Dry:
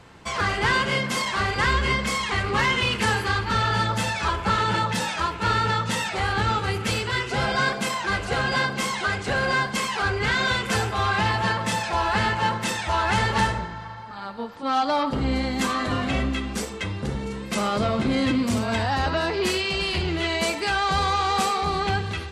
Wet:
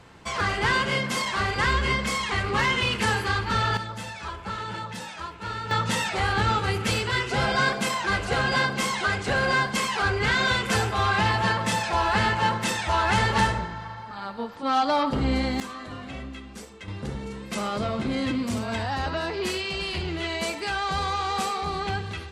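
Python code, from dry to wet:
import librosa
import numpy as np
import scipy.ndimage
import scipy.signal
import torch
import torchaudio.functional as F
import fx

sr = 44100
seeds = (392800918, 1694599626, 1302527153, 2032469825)

y = fx.gain(x, sr, db=fx.steps((0.0, -1.5), (3.77, -10.5), (5.71, 0.0), (15.6, -12.5), (16.88, -4.5)))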